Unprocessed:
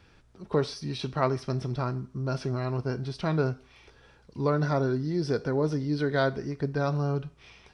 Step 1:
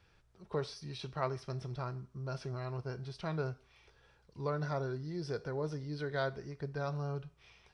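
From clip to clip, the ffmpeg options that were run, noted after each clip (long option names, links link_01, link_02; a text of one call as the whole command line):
ffmpeg -i in.wav -af "equalizer=frequency=260:width_type=o:width=0.64:gain=-9,volume=-8.5dB" out.wav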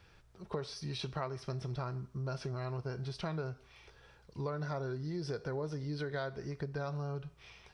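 ffmpeg -i in.wav -af "acompressor=threshold=-40dB:ratio=6,volume=5.5dB" out.wav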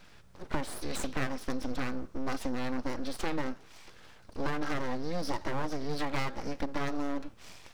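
ffmpeg -i in.wav -af "aeval=exprs='abs(val(0))':channel_layout=same,volume=8dB" out.wav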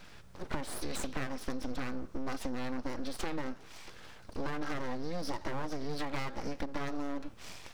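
ffmpeg -i in.wav -af "acompressor=threshold=-35dB:ratio=3,volume=3dB" out.wav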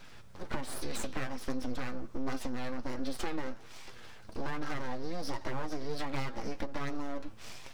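ffmpeg -i in.wav -af "flanger=delay=7.3:depth=2.4:regen=46:speed=1.3:shape=triangular,volume=4dB" out.wav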